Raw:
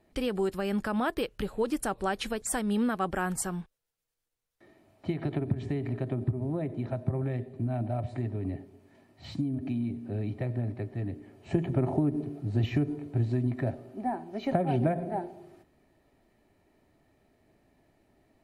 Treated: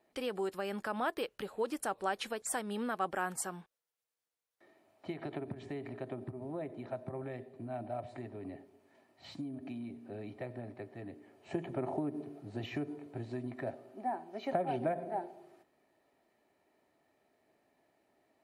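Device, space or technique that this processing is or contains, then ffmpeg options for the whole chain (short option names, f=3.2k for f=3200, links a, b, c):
filter by subtraction: -filter_complex "[0:a]asplit=2[a][b];[b]lowpass=680,volume=-1[c];[a][c]amix=inputs=2:normalize=0,volume=-5dB"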